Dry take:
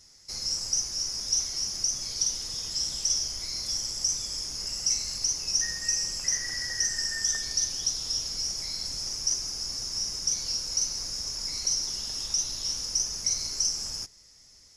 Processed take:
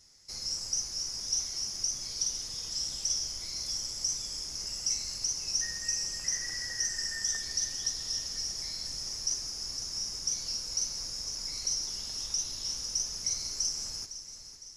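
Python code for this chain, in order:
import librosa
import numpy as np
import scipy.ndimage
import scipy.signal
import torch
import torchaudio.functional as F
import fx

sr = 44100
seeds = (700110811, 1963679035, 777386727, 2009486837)

y = fx.echo_feedback(x, sr, ms=508, feedback_pct=53, wet_db=-12)
y = F.gain(torch.from_numpy(y), -4.5).numpy()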